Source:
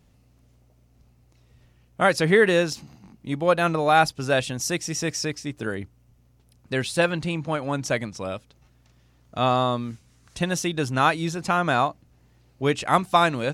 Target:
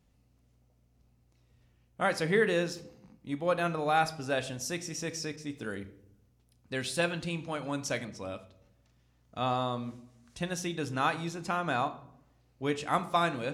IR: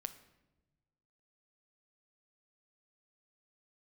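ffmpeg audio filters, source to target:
-filter_complex "[1:a]atrim=start_sample=2205,asetrate=74970,aresample=44100[link_01];[0:a][link_01]afir=irnorm=-1:irlink=0,asettb=1/sr,asplit=3[link_02][link_03][link_04];[link_02]atrim=end=5.364[link_05];[link_03]atrim=start=5.36:end=8.05,asetpts=PTS-STARTPTS,afade=type=in:duration=0.004:curve=qsin,afade=type=out:start_time=2.686:duration=0.004:curve=qsin,adynamicequalizer=threshold=0.00398:dfrequency=2500:dqfactor=0.7:tfrequency=2500:tqfactor=0.7:attack=5:release=100:ratio=0.375:range=2.5:mode=boostabove:tftype=highshelf[link_06];[link_04]atrim=start=8.046[link_07];[link_05][link_06]acrossfade=duration=0.004:curve1=hsin:curve2=qsin[link_08];[link_08][link_07]acrossfade=duration=0.004:curve1=qsin:curve2=hsin,volume=-1.5dB"

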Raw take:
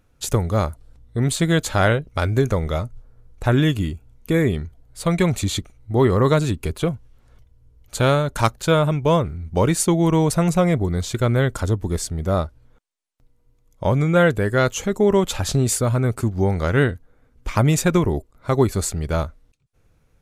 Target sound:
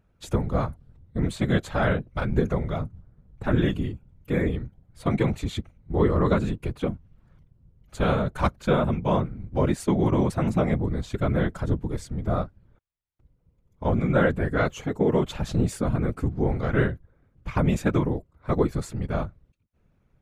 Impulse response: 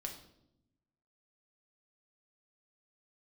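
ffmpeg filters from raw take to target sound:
-af "bass=frequency=250:gain=2,treble=frequency=4000:gain=-12,afftfilt=real='hypot(re,im)*cos(2*PI*random(0))':imag='hypot(re,im)*sin(2*PI*random(1))':win_size=512:overlap=0.75"

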